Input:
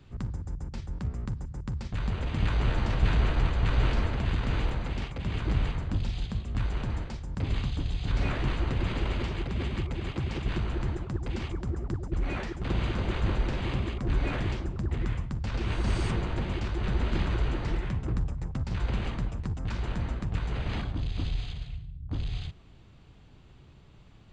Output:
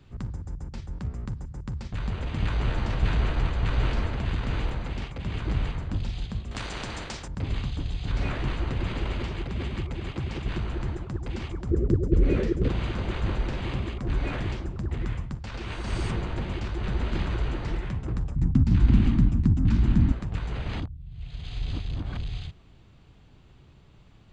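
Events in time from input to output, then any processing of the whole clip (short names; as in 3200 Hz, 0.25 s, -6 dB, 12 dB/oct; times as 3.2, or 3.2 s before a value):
6.51–7.28 spectral compressor 2:1
11.71–12.69 resonant low shelf 600 Hz +8.5 dB, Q 3
15.35–15.92 low shelf 380 Hz -6 dB
18.36–20.12 resonant low shelf 360 Hz +10 dB, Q 3
20.8–22.17 reverse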